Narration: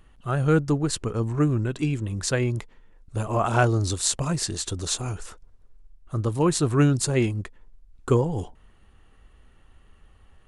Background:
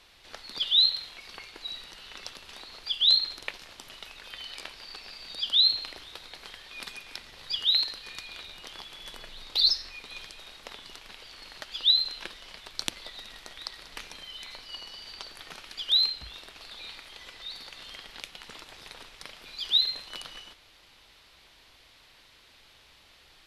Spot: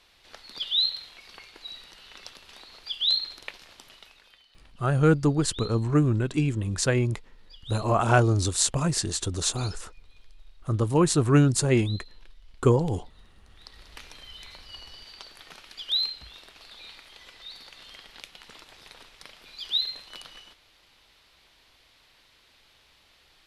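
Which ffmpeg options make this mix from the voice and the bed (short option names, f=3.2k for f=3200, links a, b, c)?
-filter_complex "[0:a]adelay=4550,volume=0.5dB[a];[1:a]volume=14.5dB,afade=t=out:st=3.76:d=0.69:silence=0.133352,afade=t=in:st=13.47:d=0.6:silence=0.133352[b];[a][b]amix=inputs=2:normalize=0"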